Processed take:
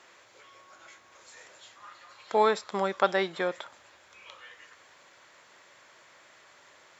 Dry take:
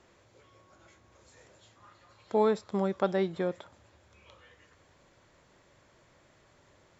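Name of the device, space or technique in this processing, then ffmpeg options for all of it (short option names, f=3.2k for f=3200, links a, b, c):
filter by subtraction: -filter_complex "[0:a]asplit=2[a][b];[b]lowpass=1.6k,volume=-1[c];[a][c]amix=inputs=2:normalize=0,volume=8.5dB"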